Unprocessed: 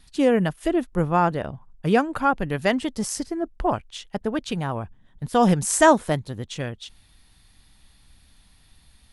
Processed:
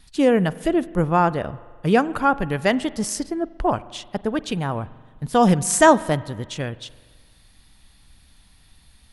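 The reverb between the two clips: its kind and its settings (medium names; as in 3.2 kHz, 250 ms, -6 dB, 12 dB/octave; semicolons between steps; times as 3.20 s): spring tank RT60 1.6 s, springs 43 ms, chirp 80 ms, DRR 18 dB; trim +2 dB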